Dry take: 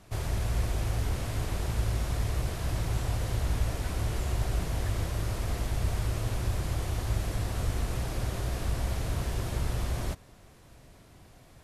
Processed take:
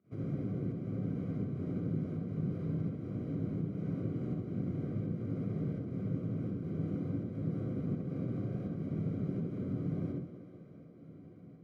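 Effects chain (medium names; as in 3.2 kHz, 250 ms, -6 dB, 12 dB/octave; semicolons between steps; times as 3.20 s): octave divider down 1 oct, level +3 dB; high-pass 110 Hz 24 dB/octave; compression, threshold -34 dBFS, peak gain reduction 8 dB; boxcar filter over 50 samples; volume shaper 83 bpm, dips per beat 1, -20 dB, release 186 ms; thinning echo 192 ms, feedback 76%, high-pass 160 Hz, level -13.5 dB; reverberation RT60 0.45 s, pre-delay 57 ms, DRR 0 dB; trim -2.5 dB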